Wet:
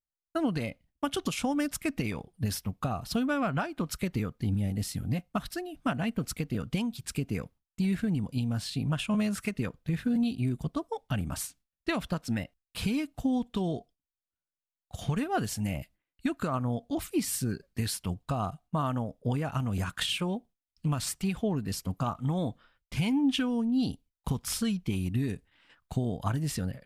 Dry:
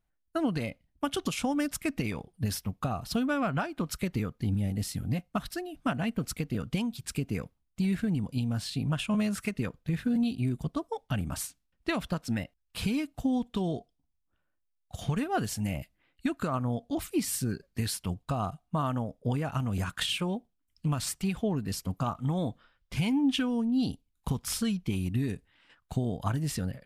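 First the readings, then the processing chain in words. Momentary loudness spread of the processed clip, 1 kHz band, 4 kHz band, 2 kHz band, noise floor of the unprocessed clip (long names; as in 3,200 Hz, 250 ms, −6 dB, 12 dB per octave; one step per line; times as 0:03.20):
7 LU, 0.0 dB, 0.0 dB, 0.0 dB, −77 dBFS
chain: noise gate with hold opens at −57 dBFS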